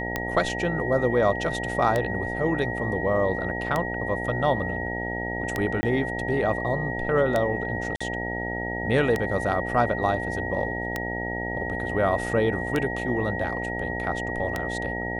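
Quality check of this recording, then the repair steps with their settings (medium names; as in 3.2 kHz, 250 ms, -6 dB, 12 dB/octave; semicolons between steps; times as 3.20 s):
buzz 60 Hz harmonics 15 -32 dBFS
tick 33 1/3 rpm -11 dBFS
whine 1.9 kHz -31 dBFS
5.81–5.83 s: dropout 20 ms
7.96–8.01 s: dropout 45 ms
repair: de-click; de-hum 60 Hz, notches 15; band-stop 1.9 kHz, Q 30; interpolate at 5.81 s, 20 ms; interpolate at 7.96 s, 45 ms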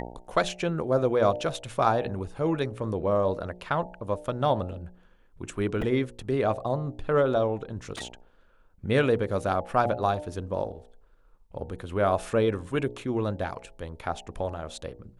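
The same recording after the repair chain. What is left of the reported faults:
nothing left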